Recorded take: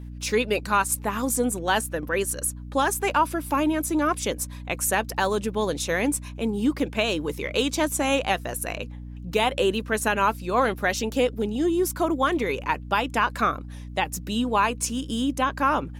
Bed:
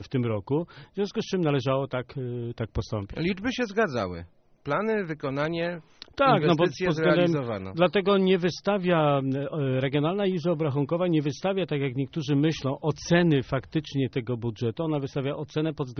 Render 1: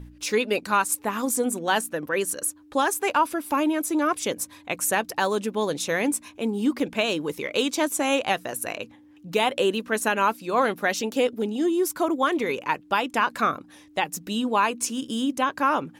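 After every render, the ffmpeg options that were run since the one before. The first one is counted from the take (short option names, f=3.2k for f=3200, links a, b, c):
-af "bandreject=f=60:t=h:w=4,bandreject=f=120:t=h:w=4,bandreject=f=180:t=h:w=4,bandreject=f=240:t=h:w=4"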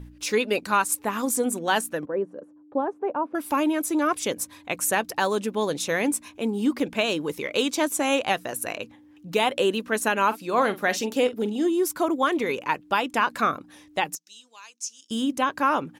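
-filter_complex "[0:a]asettb=1/sr,asplit=3[a][b][c];[a]atrim=end=2.054[d];[b]atrim=start=2.05:end=3.35,asetpts=PTS-STARTPTS,afade=t=in:d=0.004:c=qsin,afade=t=out:st=1.296:d=0.004:c=qsin,asuperpass=centerf=350:order=4:qfactor=0.58[e];[c]atrim=start=3.346[f];[d][e]acrossfade=d=0.004:c1=hsin:c2=qsin[g];[g][f]acrossfade=d=0.004:c1=qsin:c2=hsin,asplit=3[h][i][j];[h]afade=t=out:st=10.3:d=0.02[k];[i]asplit=2[l][m];[m]adelay=44,volume=-14dB[n];[l][n]amix=inputs=2:normalize=0,afade=t=in:st=10.3:d=0.02,afade=t=out:st=11.67:d=0.02[o];[j]afade=t=in:st=11.67:d=0.02[p];[k][o][p]amix=inputs=3:normalize=0,asettb=1/sr,asplit=3[q][r][s];[q]atrim=end=14.154[t];[r]atrim=start=14.15:end=15.11,asetpts=PTS-STARTPTS,afade=t=in:d=0.004:c=qsin,afade=t=out:st=0.956:d=0.004:c=qsin,bandpass=f=6k:t=q:w=3.7[u];[s]atrim=start=15.106[v];[t][u]acrossfade=d=0.004:c1=hsin:c2=qsin[w];[w][v]acrossfade=d=0.004:c1=qsin:c2=hsin"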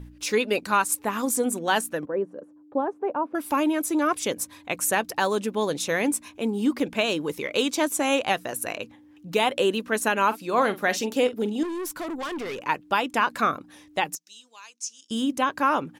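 -filter_complex "[0:a]asettb=1/sr,asplit=3[a][b][c];[a]atrim=end=11.634[d];[b]atrim=start=11.63:end=12.63,asetpts=PTS-STARTPTS,afade=t=in:d=0.004:c=qsin,afade=t=out:st=0.996:d=0.004:c=qsin,aeval=exprs='(tanh(28.2*val(0)+0.15)-tanh(0.15))/28.2':c=same[e];[c]atrim=start=12.626[f];[d][e]acrossfade=d=0.004:c1=hsin:c2=qsin[g];[g][f]acrossfade=d=0.004:c1=qsin:c2=hsin,asettb=1/sr,asplit=3[h][i][j];[h]atrim=end=14.734[k];[i]atrim=start=14.73:end=15.16,asetpts=PTS-STARTPTS,afade=t=in:d=0.004:c=qsin,afade=t=out:st=0.426:d=0.004:c=qsin,lowpass=11k[l];[j]atrim=start=15.156[m];[k][l]acrossfade=d=0.004:c1=hsin:c2=qsin[n];[n][m]acrossfade=d=0.004:c1=qsin:c2=hsin"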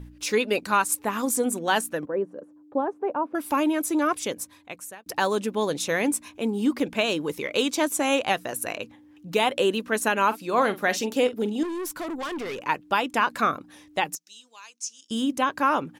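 -filter_complex "[0:a]asplit=2[a][b];[a]atrim=end=5.06,asetpts=PTS-STARTPTS,afade=t=out:st=4.03:d=1.03[c];[b]atrim=start=5.06,asetpts=PTS-STARTPTS,afade=t=in:d=0.004:c=hsin[d];[c][d]concat=n=2:v=0:a=1"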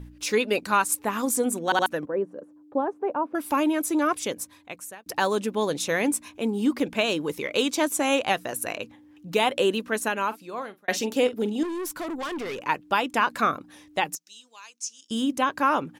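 -filter_complex "[0:a]asplit=5[a][b][c][d][e];[a]atrim=end=1.722[f];[b]atrim=start=1.648:end=1.722[g];[c]atrim=start=1.648:end=1.722[h];[d]atrim=start=1.858:end=10.88,asetpts=PTS-STARTPTS,afade=t=out:st=7.882:d=1.14[i];[e]atrim=start=10.88,asetpts=PTS-STARTPTS,afade=t=in:d=0.004:c=hsin[j];[f][g]acrossfade=d=0.004:c1=hsin:c2=hsin[k];[k][h]acrossfade=d=0.004:c1=hsin:c2=hsin[l];[i][j]concat=n=2:v=0:a=1[m];[l][m]acrossfade=d=0.004:c1=hsin:c2=hsin"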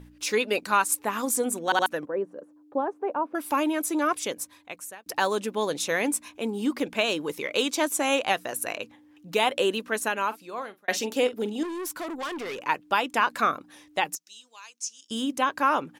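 -af "lowshelf=f=230:g=-8.5"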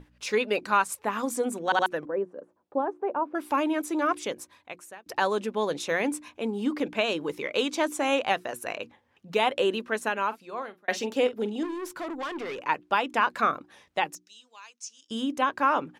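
-af "aemphasis=mode=reproduction:type=50kf,bandreject=f=60:t=h:w=6,bandreject=f=120:t=h:w=6,bandreject=f=180:t=h:w=6,bandreject=f=240:t=h:w=6,bandreject=f=300:t=h:w=6,bandreject=f=360:t=h:w=6"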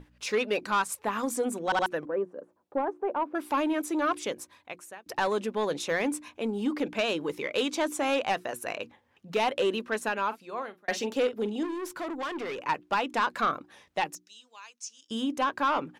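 -af "asoftclip=type=tanh:threshold=-18.5dB"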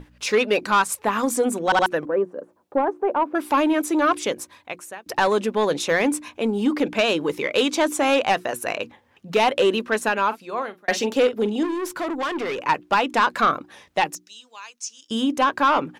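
-af "volume=8dB"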